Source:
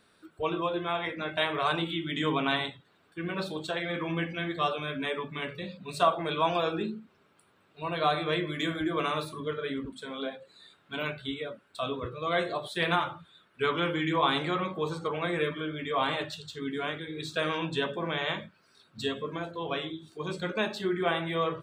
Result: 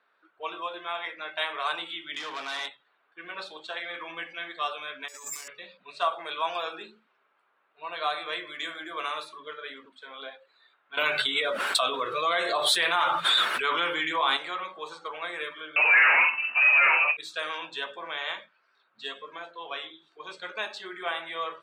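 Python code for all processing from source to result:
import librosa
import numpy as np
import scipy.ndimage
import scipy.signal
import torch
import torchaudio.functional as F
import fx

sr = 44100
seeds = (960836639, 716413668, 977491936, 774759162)

y = fx.chain(x, sr, fx.clip_hard(threshold_db=-29.0),
    fx.env_flatten(amount_pct=70), at=(2.14, 2.69))
y = fx.chain(y, sr, fx.notch(hz=3200.0, q=13.0),
    fx.over_compress(threshold_db=-43.0, ratio=-1.0),
    fx.resample_bad(factor=6, down='filtered', up='zero_stuff'), at=(5.08, 5.48))
y = fx.chain(y, sr, fx.low_shelf(hz=180.0, db=6.0),
    fx.env_flatten(amount_pct=100), at=(10.97, 14.37))
y = fx.chain(y, sr, fx.doubler(ms=47.0, db=-9.5),
    fx.leveller(passes=5),
    fx.freq_invert(carrier_hz=2800), at=(15.76, 17.17))
y = fx.env_lowpass(y, sr, base_hz=1800.0, full_db=-25.0)
y = scipy.signal.sosfilt(scipy.signal.butter(2, 790.0, 'highpass', fs=sr, output='sos'), y)
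y = fx.end_taper(y, sr, db_per_s=290.0)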